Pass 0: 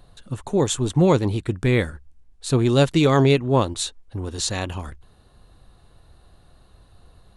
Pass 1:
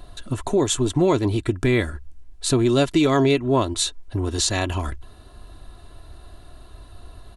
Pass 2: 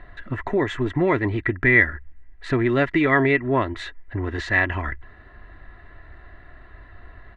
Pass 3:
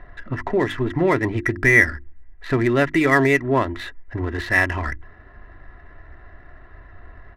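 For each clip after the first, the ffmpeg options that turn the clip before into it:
-af "aecho=1:1:3:0.52,acompressor=threshold=-29dB:ratio=2,volume=7dB"
-af "lowpass=f=1.9k:t=q:w=11,volume=-2.5dB"
-af "adynamicsmooth=sensitivity=6.5:basefreq=2.7k,bandreject=f=50:t=h:w=6,bandreject=f=100:t=h:w=6,bandreject=f=150:t=h:w=6,bandreject=f=200:t=h:w=6,bandreject=f=250:t=h:w=6,bandreject=f=300:t=h:w=6,bandreject=f=350:t=h:w=6,volume=2dB"

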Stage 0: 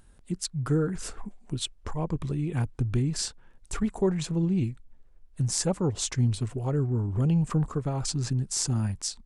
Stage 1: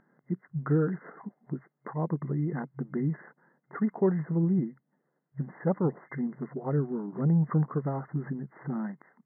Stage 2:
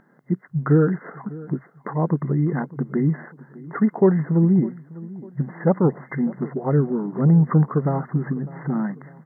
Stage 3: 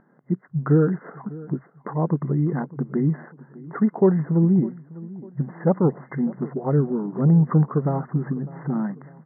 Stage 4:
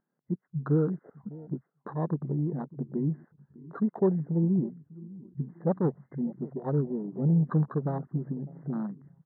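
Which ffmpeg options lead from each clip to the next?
-af "afftfilt=real='re*between(b*sr/4096,130,2100)':imag='im*between(b*sr/4096,130,2100)':win_size=4096:overlap=0.75"
-filter_complex "[0:a]asplit=2[a][b];[b]adelay=601,lowpass=f=1.7k:p=1,volume=-19dB,asplit=2[c][d];[d]adelay=601,lowpass=f=1.7k:p=1,volume=0.43,asplit=2[e][f];[f]adelay=601,lowpass=f=1.7k:p=1,volume=0.43[g];[a][c][e][g]amix=inputs=4:normalize=0,volume=9dB"
-af "lowpass=1.5k,volume=-1dB"
-af "afwtdn=0.0316,volume=-7.5dB"

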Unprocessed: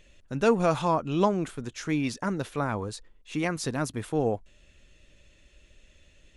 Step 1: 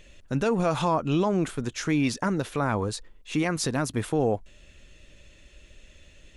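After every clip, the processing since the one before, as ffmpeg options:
-af "alimiter=limit=-20.5dB:level=0:latency=1:release=106,volume=5.5dB"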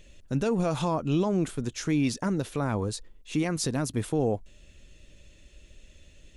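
-af "equalizer=f=1.4k:t=o:w=2.5:g=-6.5"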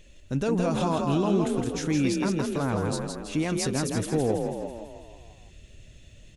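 -filter_complex "[0:a]asplit=8[a][b][c][d][e][f][g][h];[b]adelay=164,afreqshift=38,volume=-4dB[i];[c]adelay=328,afreqshift=76,volume=-9.4dB[j];[d]adelay=492,afreqshift=114,volume=-14.7dB[k];[e]adelay=656,afreqshift=152,volume=-20.1dB[l];[f]adelay=820,afreqshift=190,volume=-25.4dB[m];[g]adelay=984,afreqshift=228,volume=-30.8dB[n];[h]adelay=1148,afreqshift=266,volume=-36.1dB[o];[a][i][j][k][l][m][n][o]amix=inputs=8:normalize=0"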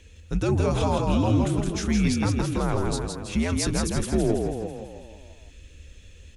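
-af "afreqshift=-91,volume=2.5dB"

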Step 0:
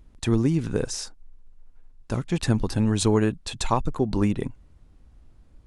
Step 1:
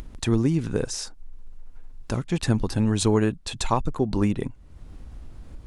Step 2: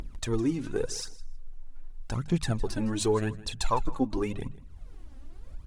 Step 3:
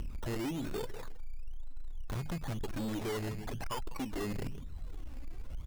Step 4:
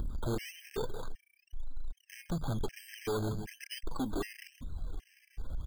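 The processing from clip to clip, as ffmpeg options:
-af "acompressor=mode=upward:threshold=-27dB:ratio=2.5"
-af "bandreject=f=50:t=h:w=6,bandreject=f=100:t=h:w=6,bandreject=f=150:t=h:w=6,bandreject=f=200:t=h:w=6,aphaser=in_gain=1:out_gain=1:delay=3.9:decay=0.65:speed=0.87:type=triangular,aecho=1:1:159|318:0.112|0.0168,volume=-7dB"
-af "acompressor=threshold=-30dB:ratio=6,aresample=8000,asoftclip=type=tanh:threshold=-38dB,aresample=44100,acrusher=samples=15:mix=1:aa=0.000001:lfo=1:lforange=9:lforate=0.99,volume=5dB"
-af "afftfilt=real='re*gt(sin(2*PI*1.3*pts/sr)*(1-2*mod(floor(b*sr/1024/1600),2)),0)':imag='im*gt(sin(2*PI*1.3*pts/sr)*(1-2*mod(floor(b*sr/1024/1600),2)),0)':win_size=1024:overlap=0.75,volume=3.5dB"

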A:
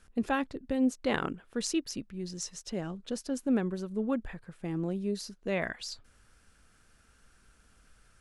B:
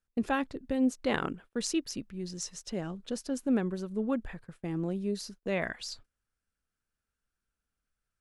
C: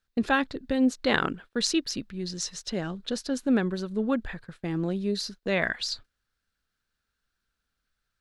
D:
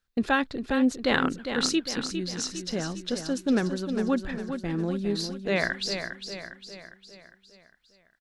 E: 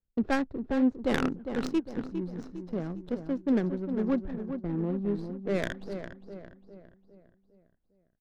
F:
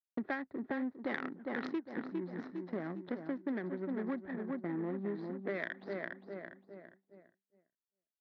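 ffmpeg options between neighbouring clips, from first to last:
-af "agate=range=-25dB:threshold=-49dB:ratio=16:detection=peak"
-af "equalizer=f=1.6k:t=o:w=0.67:g=5,equalizer=f=4k:t=o:w=0.67:g=9,equalizer=f=10k:t=o:w=0.67:g=-4,volume=4dB"
-af "aecho=1:1:405|810|1215|1620|2025|2430:0.398|0.199|0.0995|0.0498|0.0249|0.0124"
-filter_complex "[0:a]acrossover=split=260|710|5300[a][b][c][d];[c]aeval=exprs='max(val(0),0)':c=same[e];[a][b][e][d]amix=inputs=4:normalize=0,adynamicsmooth=sensitivity=2:basefreq=650,volume=-1.5dB"
-af "highpass=290,equalizer=f=480:t=q:w=4:g=-7,equalizer=f=1.9k:t=q:w=4:g=10,equalizer=f=2.8k:t=q:w=4:g=-9,lowpass=f=3.8k:w=0.5412,lowpass=f=3.8k:w=1.3066,agate=range=-33dB:threshold=-58dB:ratio=3:detection=peak,acompressor=threshold=-36dB:ratio=10,volume=2.5dB"

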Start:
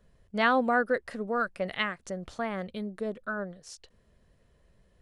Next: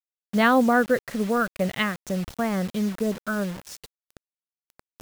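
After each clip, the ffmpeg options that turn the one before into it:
-af "equalizer=f=130:t=o:w=2.1:g=10.5,areverse,acompressor=mode=upward:threshold=-42dB:ratio=2.5,areverse,acrusher=bits=6:mix=0:aa=0.000001,volume=3.5dB"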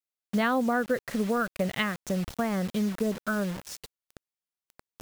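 -af "acompressor=threshold=-24dB:ratio=3"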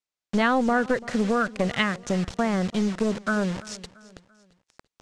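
-filter_complex "[0:a]lowpass=f=8k:w=0.5412,lowpass=f=8k:w=1.3066,acrossover=split=1100[a][b];[a]aeval=exprs='clip(val(0),-1,0.0376)':c=same[c];[c][b]amix=inputs=2:normalize=0,aecho=1:1:339|678|1017:0.1|0.043|0.0185,volume=4.5dB"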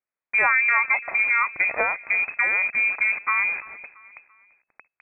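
-af "lowpass=f=2.2k:t=q:w=0.5098,lowpass=f=2.2k:t=q:w=0.6013,lowpass=f=2.2k:t=q:w=0.9,lowpass=f=2.2k:t=q:w=2.563,afreqshift=-2600,volume=2dB"

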